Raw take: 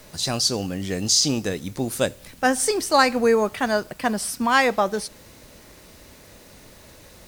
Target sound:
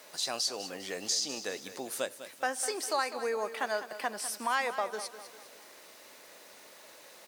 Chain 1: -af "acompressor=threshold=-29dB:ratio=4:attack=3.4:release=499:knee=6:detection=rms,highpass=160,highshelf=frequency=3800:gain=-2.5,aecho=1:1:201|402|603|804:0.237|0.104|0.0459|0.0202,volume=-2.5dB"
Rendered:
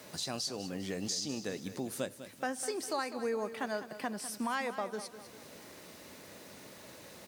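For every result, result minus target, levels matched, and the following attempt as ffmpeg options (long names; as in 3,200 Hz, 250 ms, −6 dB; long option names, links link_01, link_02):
125 Hz band +16.0 dB; downward compressor: peak gain reduction +5.5 dB
-af "acompressor=threshold=-29dB:ratio=4:attack=3.4:release=499:knee=6:detection=rms,highpass=520,highshelf=frequency=3800:gain=-2.5,aecho=1:1:201|402|603|804:0.237|0.104|0.0459|0.0202,volume=-2.5dB"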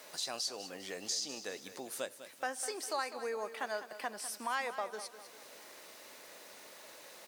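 downward compressor: peak gain reduction +5.5 dB
-af "acompressor=threshold=-21.5dB:ratio=4:attack=3.4:release=499:knee=6:detection=rms,highpass=520,highshelf=frequency=3800:gain=-2.5,aecho=1:1:201|402|603|804:0.237|0.104|0.0459|0.0202,volume=-2.5dB"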